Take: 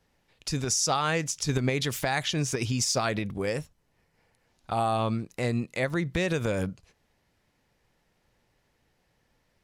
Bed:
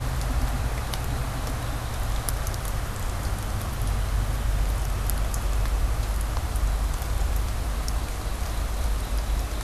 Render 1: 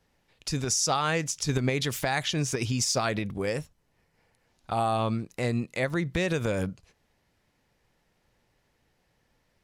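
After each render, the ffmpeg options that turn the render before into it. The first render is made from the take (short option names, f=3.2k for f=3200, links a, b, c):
-af anull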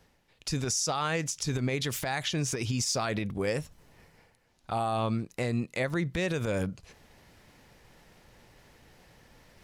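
-af "areverse,acompressor=mode=upward:threshold=-44dB:ratio=2.5,areverse,alimiter=limit=-20dB:level=0:latency=1:release=62"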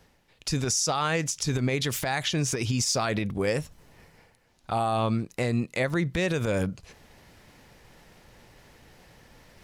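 -af "volume=3.5dB"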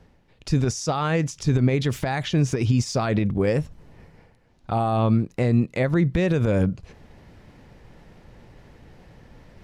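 -af "lowpass=f=3.2k:p=1,lowshelf=f=490:g=8.5"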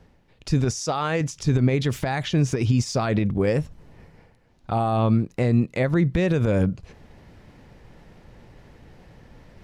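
-filter_complex "[0:a]asettb=1/sr,asplit=3[a][b][c];[a]atrim=end=0.804[d];[b]atrim=start=0.8:end=1.21,asetpts=PTS-STARTPTS,afade=t=in:d=0.004:c=qsin,afade=t=out:st=0.406:d=0.004:c=qsin,bass=f=250:g=-6,treble=f=4k:g=1[e];[c]atrim=start=1.206[f];[d][e]acrossfade=d=0.004:c1=hsin:c2=qsin[g];[g][f]acrossfade=d=0.004:c1=qsin:c2=hsin"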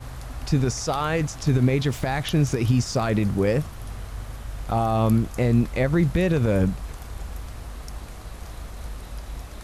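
-filter_complex "[1:a]volume=-9dB[a];[0:a][a]amix=inputs=2:normalize=0"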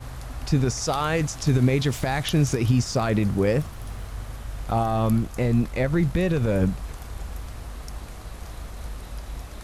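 -filter_complex "[0:a]asettb=1/sr,asplit=3[a][b][c];[a]atrim=end=0.824[d];[b]atrim=start=0.82:end=2.57,asetpts=PTS-STARTPTS,afade=t=in:d=0.004:c=qsin,afade=t=out:st=1.746:d=0.004:c=qsin,equalizer=f=8.1k:t=o:w=2.2:g=3.5[e];[c]atrim=start=2.566[f];[d][e]acrossfade=d=0.004:c1=hsin:c2=qsin[g];[g][f]acrossfade=d=0.004:c1=qsin:c2=hsin,asettb=1/sr,asplit=3[h][i][j];[h]atrim=end=3.604[k];[i]atrim=start=3.6:end=4.11,asetpts=PTS-STARTPTS,afade=t=in:d=0.004:c=qsin,afade=t=out:st=0.506:d=0.004:c=qsin,acrusher=bits=9:mode=log:mix=0:aa=0.000001[l];[j]atrim=start=4.106[m];[k][l]acrossfade=d=0.004:c1=hsin:c2=qsin[n];[n][m]acrossfade=d=0.004:c1=qsin:c2=hsin,asettb=1/sr,asplit=3[o][p][q];[o]atrim=end=4.834[r];[p]atrim=start=4.83:end=6.62,asetpts=PTS-STARTPTS,afade=t=in:d=0.004:c=qsin,afade=t=out:st=1.786:d=0.004:c=qsin,aeval=exprs='if(lt(val(0),0),0.708*val(0),val(0))':c=same[s];[q]atrim=start=6.616[t];[r][s]acrossfade=d=0.004:c1=hsin:c2=qsin[u];[u][t]acrossfade=d=0.004:c1=qsin:c2=hsin"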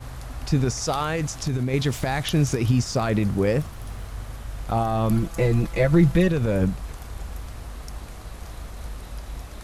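-filter_complex "[0:a]asettb=1/sr,asplit=3[a][b][c];[a]atrim=end=1.024[d];[b]atrim=start=1.02:end=1.74,asetpts=PTS-STARTPTS,afade=t=in:d=0.004:c=qsin,afade=t=out:st=0.716:d=0.004:c=qsin,acompressor=threshold=-20dB:ratio=6:attack=3.2:release=140:knee=1:detection=peak[e];[c]atrim=start=1.736[f];[d][e]acrossfade=d=0.004:c1=hsin:c2=qsin[g];[g][f]acrossfade=d=0.004:c1=qsin:c2=hsin,asettb=1/sr,asplit=3[h][i][j];[h]atrim=end=5.104[k];[i]atrim=start=5.1:end=6.28,asetpts=PTS-STARTPTS,afade=t=in:d=0.004:c=qsin,afade=t=out:st=1.176:d=0.004:c=qsin,aecho=1:1:6:0.97,atrim=end_sample=52038[l];[j]atrim=start=6.276[m];[k][l]acrossfade=d=0.004:c1=hsin:c2=qsin[n];[n][m]acrossfade=d=0.004:c1=qsin:c2=hsin"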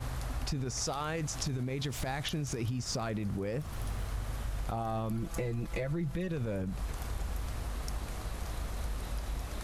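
-af "alimiter=limit=-19.5dB:level=0:latency=1:release=141,acompressor=threshold=-31dB:ratio=6"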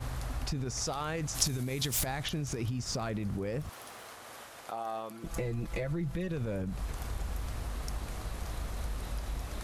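-filter_complex "[0:a]asplit=3[a][b][c];[a]afade=t=out:st=1.34:d=0.02[d];[b]aemphasis=mode=production:type=75kf,afade=t=in:st=1.34:d=0.02,afade=t=out:st=2.04:d=0.02[e];[c]afade=t=in:st=2.04:d=0.02[f];[d][e][f]amix=inputs=3:normalize=0,asettb=1/sr,asplit=3[g][h][i];[g]atrim=end=3.694[j];[h]atrim=start=3.69:end=5.24,asetpts=PTS-STARTPTS,afade=t=in:d=0.004:c=qsin,afade=t=out:st=1.546:d=0.004:c=qsin,highpass=440[k];[i]atrim=start=5.236[l];[j][k]acrossfade=d=0.004:c1=hsin:c2=qsin[m];[m][l]acrossfade=d=0.004:c1=qsin:c2=hsin"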